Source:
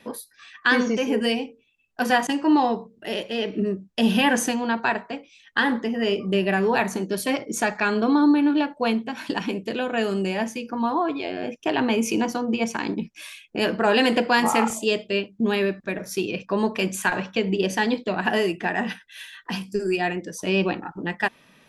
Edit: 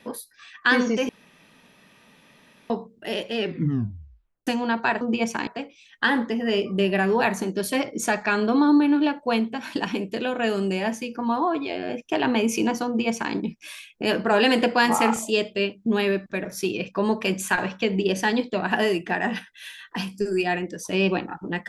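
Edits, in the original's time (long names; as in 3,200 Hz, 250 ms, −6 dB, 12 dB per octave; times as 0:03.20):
0:01.09–0:02.70: fill with room tone
0:03.36: tape stop 1.11 s
0:12.41–0:12.87: duplicate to 0:05.01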